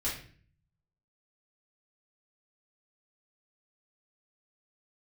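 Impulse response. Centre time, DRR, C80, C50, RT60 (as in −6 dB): 35 ms, −8.5 dB, 10.0 dB, 5.0 dB, 0.45 s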